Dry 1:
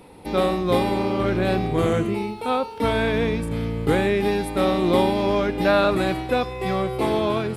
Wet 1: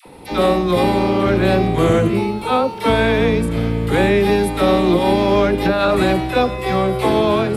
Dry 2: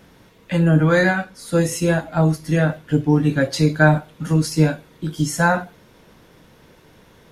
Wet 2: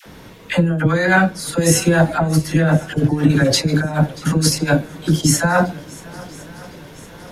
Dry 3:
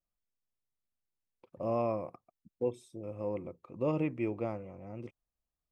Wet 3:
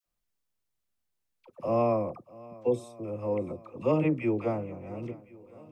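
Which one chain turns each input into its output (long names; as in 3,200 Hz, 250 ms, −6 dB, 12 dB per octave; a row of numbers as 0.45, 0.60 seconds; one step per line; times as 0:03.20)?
compressor whose output falls as the input rises −19 dBFS, ratio −0.5
all-pass dispersion lows, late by 62 ms, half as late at 700 Hz
on a send: feedback echo with a long and a short gap by turns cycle 1,059 ms, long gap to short 1.5 to 1, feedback 51%, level −21.5 dB
on the sum: level +6 dB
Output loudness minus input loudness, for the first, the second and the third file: +5.5, +2.0, +5.5 LU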